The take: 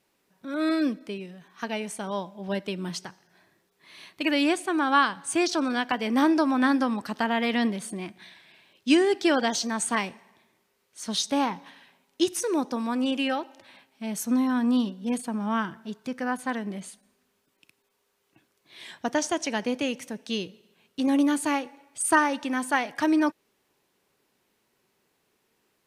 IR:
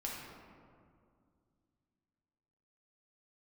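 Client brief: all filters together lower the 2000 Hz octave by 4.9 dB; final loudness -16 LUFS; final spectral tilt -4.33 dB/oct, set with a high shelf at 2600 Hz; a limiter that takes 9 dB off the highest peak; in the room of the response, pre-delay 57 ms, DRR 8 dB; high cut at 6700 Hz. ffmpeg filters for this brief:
-filter_complex "[0:a]lowpass=6.7k,equalizer=f=2k:t=o:g=-3,highshelf=f=2.6k:g=-8,alimiter=limit=-19.5dB:level=0:latency=1,asplit=2[a][b];[1:a]atrim=start_sample=2205,adelay=57[c];[b][c]afir=irnorm=-1:irlink=0,volume=-9dB[d];[a][d]amix=inputs=2:normalize=0,volume=13.5dB"

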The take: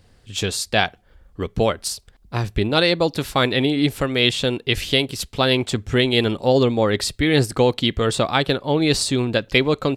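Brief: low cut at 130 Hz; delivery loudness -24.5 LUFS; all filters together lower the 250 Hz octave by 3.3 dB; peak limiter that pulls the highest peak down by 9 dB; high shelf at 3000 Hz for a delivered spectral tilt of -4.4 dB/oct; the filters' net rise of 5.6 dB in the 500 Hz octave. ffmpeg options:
-af "highpass=130,equalizer=f=250:t=o:g=-7.5,equalizer=f=500:t=o:g=8.5,highshelf=f=3k:g=-3.5,volume=-3.5dB,alimiter=limit=-12.5dB:level=0:latency=1"

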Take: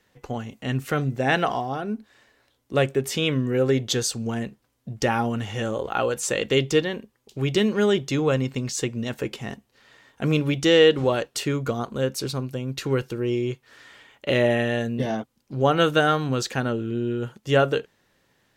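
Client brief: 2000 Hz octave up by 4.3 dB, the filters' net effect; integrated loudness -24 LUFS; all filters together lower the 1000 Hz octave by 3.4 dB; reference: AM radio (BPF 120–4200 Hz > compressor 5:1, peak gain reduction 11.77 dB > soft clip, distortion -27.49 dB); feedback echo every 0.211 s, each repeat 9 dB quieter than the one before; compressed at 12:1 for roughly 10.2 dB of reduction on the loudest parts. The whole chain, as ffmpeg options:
-af "equalizer=f=1k:t=o:g=-8.5,equalizer=f=2k:t=o:g=8.5,acompressor=threshold=-21dB:ratio=12,highpass=120,lowpass=4.2k,aecho=1:1:211|422|633|844:0.355|0.124|0.0435|0.0152,acompressor=threshold=-33dB:ratio=5,asoftclip=threshold=-21dB,volume=13dB"

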